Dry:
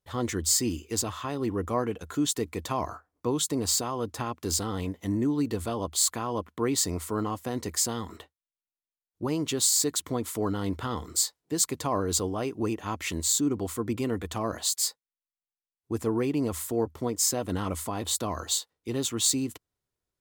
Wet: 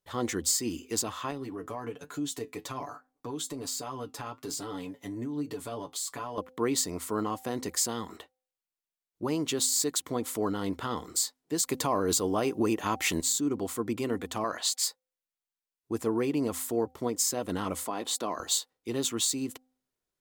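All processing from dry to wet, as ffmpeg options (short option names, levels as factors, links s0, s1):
-filter_complex "[0:a]asettb=1/sr,asplit=3[s0][s1][s2];[s0]atrim=end=1.314[s3];[s1]atrim=start=1.31:end=6.38,asetpts=PTS-STARTPTS,afade=t=in:d=0.004:c=qsin,afade=t=out:st=5.066:d=0.004:c=qsin,aecho=1:1:7:0.69,atrim=end_sample=223587,acompressor=threshold=0.0447:ratio=4:attack=3.2:release=140:knee=1:detection=peak,flanger=delay=6.5:depth=3:regen=68:speed=1.2:shape=sinusoidal[s4];[s2]atrim=start=6.376[s5];[s3][s4]acrossfade=d=0.004:c1=hsin:c2=qsin[s6];[s6][s5]acrossfade=d=0.004:c1=qsin:c2=hsin,asettb=1/sr,asplit=3[s7][s8][s9];[s7]atrim=end=11.664[s10];[s8]atrim=start=11.66:end=13.21,asetpts=PTS-STARTPTS,afade=t=in:d=0.004:c=qsin,afade=t=out:st=1.546:d=0.004:c=qsin,highshelf=f=11000:g=5.5,acontrast=68[s11];[s9]atrim=start=13.206[s12];[s10][s11]acrossfade=d=0.004:c1=hsin:c2=qsin[s13];[s13][s12]acrossfade=d=0.004:c1=qsin:c2=hsin,asettb=1/sr,asplit=3[s14][s15][s16];[s14]atrim=end=14.444[s17];[s15]atrim=start=14.44:end=14.84,asetpts=PTS-STARTPTS,afade=t=in:d=0.004:c=qsin,afade=t=out:st=0.396:d=0.004:c=qsin,lowpass=f=2400:p=1,tiltshelf=f=680:g=-8.5[s18];[s16]atrim=start=14.836[s19];[s17][s18]acrossfade=d=0.004:c1=hsin:c2=qsin[s20];[s20][s19]acrossfade=d=0.004:c1=qsin:c2=hsin,asettb=1/sr,asplit=3[s21][s22][s23];[s21]atrim=end=17.864[s24];[s22]atrim=start=17.86:end=18.4,asetpts=PTS-STARTPTS,afade=t=in:d=0.004:c=qsin,afade=t=out:st=0.536:d=0.004:c=qsin,highpass=230,highshelf=f=7900:g=-7.5[s25];[s23]atrim=start=18.396[s26];[s24][s25]acrossfade=d=0.004:c1=hsin:c2=qsin[s27];[s27][s26]acrossfade=d=0.004:c1=qsin:c2=hsin,alimiter=limit=0.158:level=0:latency=1:release=215,equalizer=f=74:t=o:w=1.5:g=-11,bandreject=f=256.8:t=h:w=4,bandreject=f=513.6:t=h:w=4,bandreject=f=770.4:t=h:w=4"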